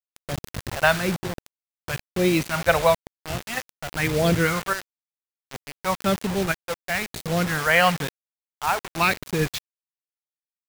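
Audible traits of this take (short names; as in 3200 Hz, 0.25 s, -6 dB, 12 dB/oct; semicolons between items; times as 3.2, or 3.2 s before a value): phasing stages 2, 1 Hz, lowest notch 260–1100 Hz; chopped level 0.56 Hz, depth 65%, duty 65%; a quantiser's noise floor 6-bit, dither none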